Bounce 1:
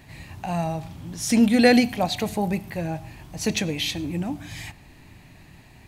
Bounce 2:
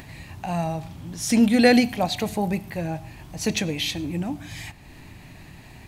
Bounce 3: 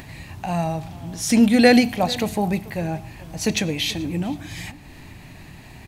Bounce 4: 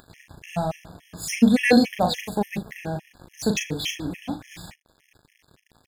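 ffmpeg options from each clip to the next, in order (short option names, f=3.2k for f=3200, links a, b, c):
-af "acompressor=mode=upward:threshold=-37dB:ratio=2.5"
-filter_complex "[0:a]asplit=2[a][b];[b]adelay=437.3,volume=-19dB,highshelf=f=4k:g=-9.84[c];[a][c]amix=inputs=2:normalize=0,volume=2.5dB"
-filter_complex "[0:a]aeval=exprs='sgn(val(0))*max(abs(val(0))-0.0141,0)':c=same,asplit=2[a][b];[b]adelay=39,volume=-6.5dB[c];[a][c]amix=inputs=2:normalize=0,afftfilt=real='re*gt(sin(2*PI*3.5*pts/sr)*(1-2*mod(floor(b*sr/1024/1700),2)),0)':imag='im*gt(sin(2*PI*3.5*pts/sr)*(1-2*mod(floor(b*sr/1024/1700),2)),0)':win_size=1024:overlap=0.75"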